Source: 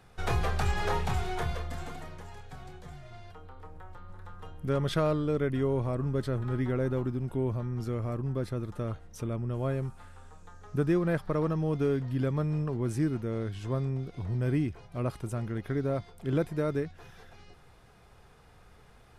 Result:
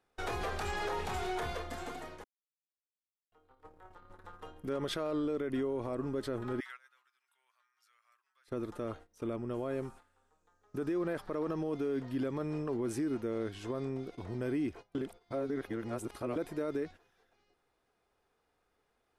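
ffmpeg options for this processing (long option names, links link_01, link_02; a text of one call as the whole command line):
ffmpeg -i in.wav -filter_complex "[0:a]asettb=1/sr,asplit=3[link_01][link_02][link_03];[link_01]atrim=end=6.604[link_04];[link_02]atrim=start=6.6:end=8.48,asetpts=PTS-STARTPTS,afade=type=in:duration=0.004:curve=qsin,afade=type=out:start_time=1.876:duration=0.004:curve=qsin,highpass=frequency=1400:width=0.5412,highpass=frequency=1400:width=1.3066[link_05];[link_03]atrim=start=8.476[link_06];[link_04][link_05]acrossfade=duration=0.004:curve1=hsin:curve2=qsin[link_07];[link_07][link_06]acrossfade=duration=0.004:curve1=qsin:curve2=hsin,asplit=5[link_08][link_09][link_10][link_11][link_12];[link_08]atrim=end=2.24,asetpts=PTS-STARTPTS,afade=type=out:start_time=2.236:duration=0.004:curve=hsin[link_13];[link_09]atrim=start=2.24:end=3.32,asetpts=PTS-STARTPTS,volume=0[link_14];[link_10]atrim=start=3.32:end=14.952,asetpts=PTS-STARTPTS,afade=type=in:duration=0.004:curve=hsin[link_15];[link_11]atrim=start=14.948:end=16.362,asetpts=PTS-STARTPTS,areverse[link_16];[link_12]atrim=start=16.358[link_17];[link_13][link_14][link_15]concat=n=3:v=0:a=1[link_18];[link_18][link_16]acrossfade=duration=0.004:curve1=hsin:curve2=hsin[link_19];[link_19][link_17]acrossfade=duration=0.004:curve1=hsin:curve2=hsin,agate=range=-18dB:threshold=-43dB:ratio=16:detection=peak,lowshelf=frequency=210:width_type=q:width=1.5:gain=-9.5,alimiter=level_in=3dB:limit=-24dB:level=0:latency=1:release=44,volume=-3dB" out.wav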